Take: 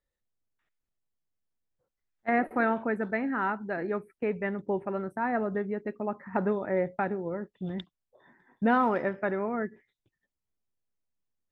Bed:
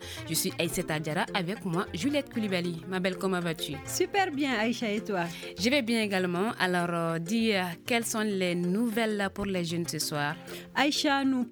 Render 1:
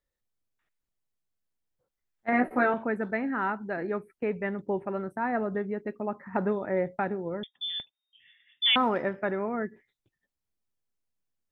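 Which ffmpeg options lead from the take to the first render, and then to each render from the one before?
-filter_complex "[0:a]asettb=1/sr,asplit=3[a][b][c];[a]atrim=end=2.314[d];[b]atrim=start=2.31:end=2.74,asetpts=PTS-STARTPTS,afade=t=in:d=0.004:c=qsin,afade=t=out:st=0.426:d=0.004:c=qsin,asplit=2[e][f];[f]adelay=16,volume=-2.5dB[g];[e][g]amix=inputs=2:normalize=0,atrim=end_sample=18963[h];[c]atrim=start=2.736[i];[d][h]acrossfade=d=0.004:c1=hsin:c2=qsin[j];[j][i]acrossfade=d=0.004:c1=qsin:c2=hsin,asettb=1/sr,asplit=3[k][l][m];[k]atrim=end=7.434[n];[l]atrim=start=7.43:end=8.76,asetpts=PTS-STARTPTS,afade=t=in:d=0.004:c=qsin,afade=t=out:st=1.326:d=0.004:c=qsin,lowpass=f=3.1k:t=q:w=0.5098,lowpass=f=3.1k:t=q:w=0.6013,lowpass=f=3.1k:t=q:w=0.9,lowpass=f=3.1k:t=q:w=2.563,afreqshift=-3700[o];[m]atrim=start=8.756[p];[n][o]acrossfade=d=0.004:c1=hsin:c2=qsin[q];[q][p]acrossfade=d=0.004:c1=qsin:c2=hsin"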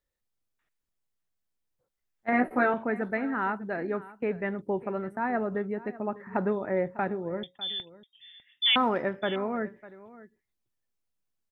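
-af "aecho=1:1:600:0.119"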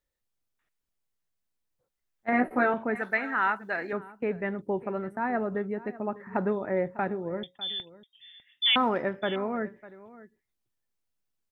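-filter_complex "[0:a]asettb=1/sr,asplit=3[a][b][c];[a]atrim=end=2.954[d];[b]atrim=start=2.95:end=3.93,asetpts=PTS-STARTPTS,afade=t=in:d=0.004:c=qsin,afade=t=out:st=0.976:d=0.004:c=qsin,tiltshelf=f=700:g=-9.5[e];[c]atrim=start=3.926[f];[d][e]acrossfade=d=0.004:c1=hsin:c2=qsin[g];[g][f]acrossfade=d=0.004:c1=qsin:c2=hsin"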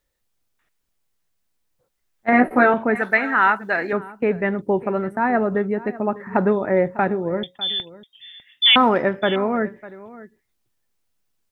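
-af "volume=9.5dB"

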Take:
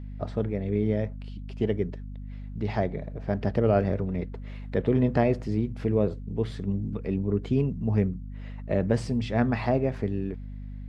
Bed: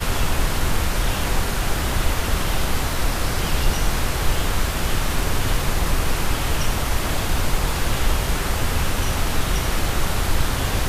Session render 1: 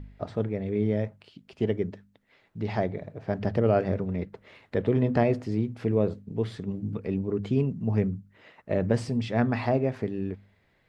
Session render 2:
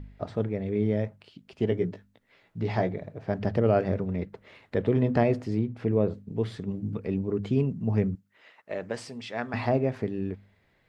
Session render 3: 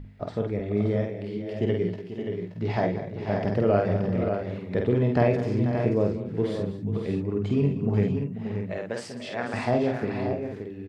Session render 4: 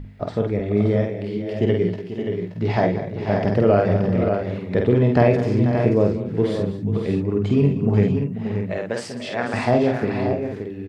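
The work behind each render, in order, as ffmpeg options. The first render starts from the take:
-af "bandreject=f=50:t=h:w=4,bandreject=f=100:t=h:w=4,bandreject=f=150:t=h:w=4,bandreject=f=200:t=h:w=4,bandreject=f=250:t=h:w=4"
-filter_complex "[0:a]asettb=1/sr,asplit=3[a][b][c];[a]atrim=end=1.704[d];[b]atrim=start=1.7:end=2.94,asetpts=PTS-STARTPTS,afade=t=in:d=0.004:c=qsin,afade=t=out:st=1.236:d=0.004:c=qsin,asplit=2[e][f];[f]adelay=17,volume=-5dB[g];[e][g]amix=inputs=2:normalize=0,atrim=end_sample=54684[h];[c]atrim=start=2.936[i];[d][h]acrossfade=d=0.004:c1=hsin:c2=qsin[j];[j][i]acrossfade=d=0.004:c1=qsin:c2=hsin,asettb=1/sr,asplit=3[k][l][m];[k]atrim=end=5.594[n];[l]atrim=start=5.59:end=6.14,asetpts=PTS-STARTPTS,afade=t=in:d=0.004:c=qsin,afade=t=out:st=0.546:d=0.004:c=qsin,highshelf=f=4.7k:g=-10.5[o];[m]atrim=start=6.136[p];[n][o]acrossfade=d=0.004:c1=hsin:c2=qsin[q];[q][p]acrossfade=d=0.004:c1=qsin:c2=hsin,asettb=1/sr,asplit=3[r][s][t];[r]atrim=end=8.154[u];[s]atrim=start=8.15:end=9.54,asetpts=PTS-STARTPTS,afade=t=in:d=0.004:c=qsin,afade=t=out:st=1.386:d=0.004:c=qsin,highpass=f=950:p=1[v];[t]atrim=start=9.536[w];[u][v]acrossfade=d=0.004:c1=hsin:c2=qsin[x];[x][w]acrossfade=d=0.004:c1=qsin:c2=hsin"
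-filter_complex "[0:a]asplit=2[a][b];[b]adelay=49,volume=-3.5dB[c];[a][c]amix=inputs=2:normalize=0,aecho=1:1:193|488|577:0.2|0.266|0.422"
-af "volume=6dB,alimiter=limit=-3dB:level=0:latency=1"

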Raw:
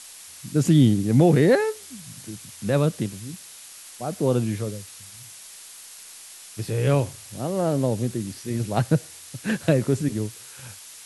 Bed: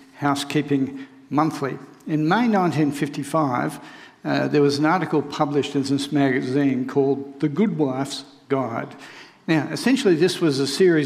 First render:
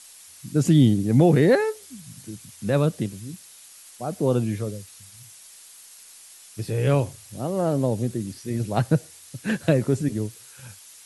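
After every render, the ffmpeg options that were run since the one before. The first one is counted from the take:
-af "afftdn=nr=6:nf=-44"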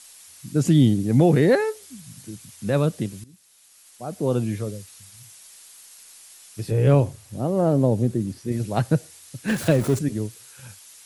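-filter_complex "[0:a]asettb=1/sr,asplit=3[a][b][c];[a]atrim=end=6.714[d];[b]atrim=start=6.71:end=8.52,asetpts=PTS-STARTPTS,afade=t=in:d=0.004:c=qsin,afade=t=out:st=1.806:d=0.004:c=qsin,tiltshelf=f=1.2k:g=4.5[e];[c]atrim=start=8.516[f];[d][e]acrossfade=d=0.004:c1=hsin:c2=qsin[g];[g][f]acrossfade=d=0.004:c1=qsin:c2=hsin,asettb=1/sr,asplit=3[h][i][j];[h]atrim=end=9.484[k];[i]atrim=start=9.48:end=9.99,asetpts=PTS-STARTPTS,afade=t=in:d=0.004:c=qsin,afade=t=out:st=0.506:d=0.004:c=qsin,aeval=exprs='val(0)+0.5*0.0376*sgn(val(0))':c=same[l];[j]atrim=start=9.986[m];[k][l]acrossfade=d=0.004:c1=hsin:c2=qsin[n];[n][m]acrossfade=d=0.004:c1=qsin:c2=hsin,asplit=2[o][p];[o]atrim=end=3.24,asetpts=PTS-STARTPTS,afade=t=out:st=3.236:d=0.004:c=hsin:silence=0.149624[q];[p]atrim=start=3.24,asetpts=PTS-STARTPTS,afade=t=in:d=1.23:silence=0.149624[r];[q][r]concat=n=2:v=0:a=1"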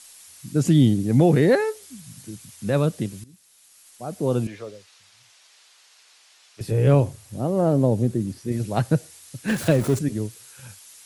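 -filter_complex "[0:a]asettb=1/sr,asplit=3[a][b][c];[a]atrim=end=4.474[d];[b]atrim=start=4.47:end=6.61,asetpts=PTS-STARTPTS,afade=t=in:d=0.004:c=qsin,afade=t=out:st=2.136:d=0.004:c=qsin,acrossover=split=390 5700:gain=0.141 1 0.1[e][f][g];[e][f][g]amix=inputs=3:normalize=0[h];[c]atrim=start=6.606[i];[d][h]acrossfade=d=0.004:c1=hsin:c2=qsin[j];[j][i]acrossfade=d=0.004:c1=qsin:c2=hsin"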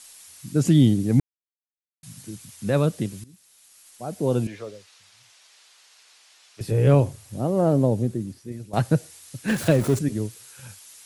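-filter_complex "[0:a]asettb=1/sr,asplit=3[a][b][c];[a]atrim=end=4.064[d];[b]atrim=start=4.06:end=4.55,asetpts=PTS-STARTPTS,afade=t=in:d=0.004:c=qsin,afade=t=out:st=0.486:d=0.004:c=qsin,bandreject=f=1.2k:w=8.8[e];[c]atrim=start=4.546[f];[d][e]acrossfade=d=0.004:c1=hsin:c2=qsin[g];[g][f]acrossfade=d=0.004:c1=qsin:c2=hsin,asplit=4[h][i][j][k];[h]atrim=end=1.2,asetpts=PTS-STARTPTS,afade=t=out:st=1.196:d=0.004:c=hsin[l];[i]atrim=start=1.2:end=2.03,asetpts=PTS-STARTPTS,volume=0[m];[j]atrim=start=2.03:end=8.73,asetpts=PTS-STARTPTS,afade=t=in:d=0.004:c=hsin,afade=t=out:st=5.71:d=0.99:silence=0.177828[n];[k]atrim=start=8.73,asetpts=PTS-STARTPTS,afade=t=in:d=0.004:c=hsin:silence=0.177828[o];[l][m][n][o]concat=n=4:v=0:a=1"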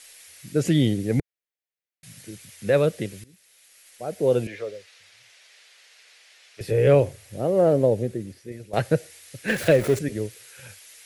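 -af "equalizer=f=125:t=o:w=1:g=-4,equalizer=f=250:t=o:w=1:g=-6,equalizer=f=500:t=o:w=1:g=8,equalizer=f=1k:t=o:w=1:g=-7,equalizer=f=2k:t=o:w=1:g=8,equalizer=f=8k:t=o:w=1:g=-3"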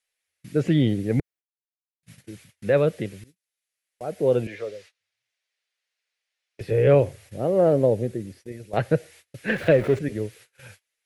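-filter_complex "[0:a]acrossover=split=3400[a][b];[b]acompressor=threshold=-53dB:ratio=4:attack=1:release=60[c];[a][c]amix=inputs=2:normalize=0,agate=range=-29dB:threshold=-47dB:ratio=16:detection=peak"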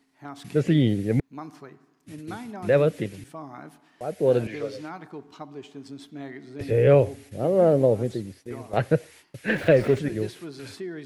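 -filter_complex "[1:a]volume=-19dB[a];[0:a][a]amix=inputs=2:normalize=0"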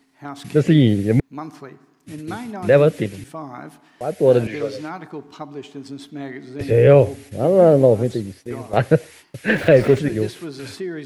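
-af "volume=6.5dB,alimiter=limit=-2dB:level=0:latency=1"

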